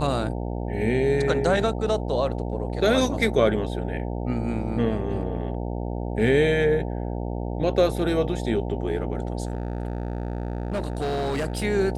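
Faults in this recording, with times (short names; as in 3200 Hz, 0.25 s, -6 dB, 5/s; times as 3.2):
buzz 60 Hz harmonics 15 -29 dBFS
9.45–11.64 clipped -22.5 dBFS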